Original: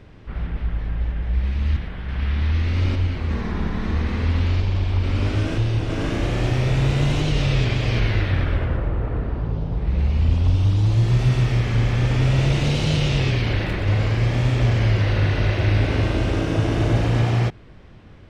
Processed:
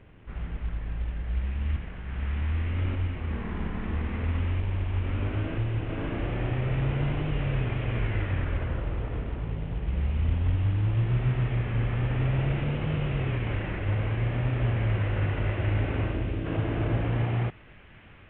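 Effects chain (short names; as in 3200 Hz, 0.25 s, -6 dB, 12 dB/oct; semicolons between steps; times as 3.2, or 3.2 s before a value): CVSD 16 kbps; 16.02–16.44 bell 1100 Hz +0.5 dB -> -11 dB 2.6 oct; thin delay 0.743 s, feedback 78%, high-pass 1500 Hz, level -17 dB; gain -7 dB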